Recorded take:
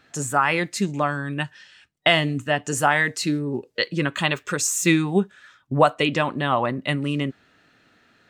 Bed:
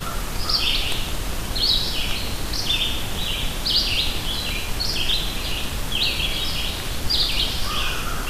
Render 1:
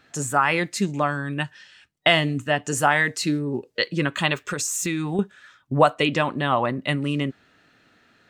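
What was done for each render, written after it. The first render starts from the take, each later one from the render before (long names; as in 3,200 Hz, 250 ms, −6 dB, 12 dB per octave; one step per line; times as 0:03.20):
0:04.47–0:05.19: downward compressor, threshold −22 dBFS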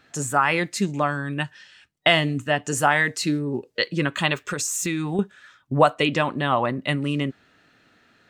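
no processing that can be heard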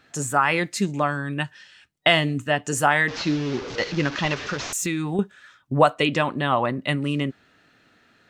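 0:03.08–0:04.73: linear delta modulator 32 kbit/s, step −27.5 dBFS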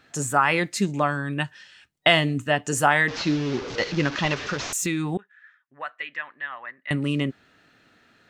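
0:05.17–0:06.91: resonant band-pass 1,800 Hz, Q 5.5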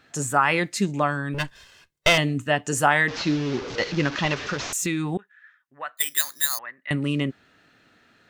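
0:01.34–0:02.18: lower of the sound and its delayed copy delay 1.9 ms
0:05.97–0:06.59: bad sample-rate conversion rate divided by 8×, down filtered, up zero stuff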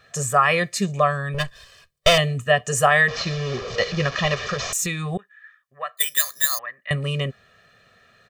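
comb filter 1.7 ms, depth 98%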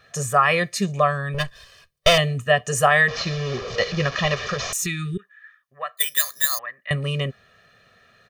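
notch filter 7,600 Hz, Q 9
0:04.81–0:05.34: healed spectral selection 450–1,200 Hz both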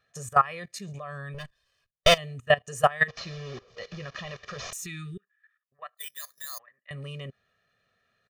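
output level in coarse steps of 15 dB
expander for the loud parts 1.5 to 1, over −41 dBFS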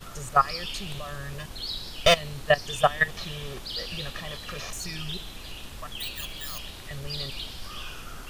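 mix in bed −14.5 dB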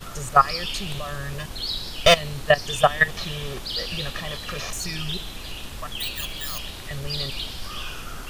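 level +5 dB
brickwall limiter −3 dBFS, peak gain reduction 2.5 dB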